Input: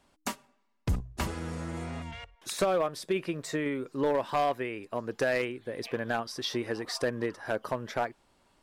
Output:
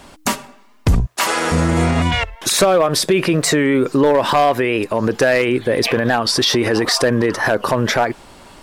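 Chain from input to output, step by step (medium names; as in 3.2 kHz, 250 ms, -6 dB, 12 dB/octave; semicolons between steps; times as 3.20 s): 1.05–1.51 s: high-pass 1.2 kHz -> 460 Hz 12 dB/octave; loudness maximiser +31 dB; warped record 45 rpm, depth 100 cents; trim -6 dB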